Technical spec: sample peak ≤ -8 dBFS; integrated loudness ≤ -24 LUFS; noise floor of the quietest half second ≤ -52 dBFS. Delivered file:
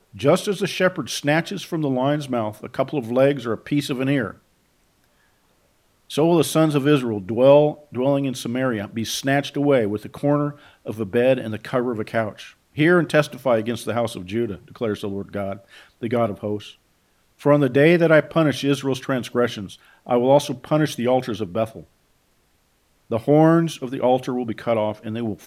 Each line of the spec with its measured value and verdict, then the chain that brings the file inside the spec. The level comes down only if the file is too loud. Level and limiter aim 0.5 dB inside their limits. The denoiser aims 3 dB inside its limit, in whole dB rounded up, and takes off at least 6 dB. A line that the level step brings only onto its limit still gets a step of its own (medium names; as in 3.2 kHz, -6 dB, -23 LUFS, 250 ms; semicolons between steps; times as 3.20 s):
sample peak -2.0 dBFS: fail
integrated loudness -21.0 LUFS: fail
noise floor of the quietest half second -63 dBFS: pass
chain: trim -3.5 dB; peak limiter -8.5 dBFS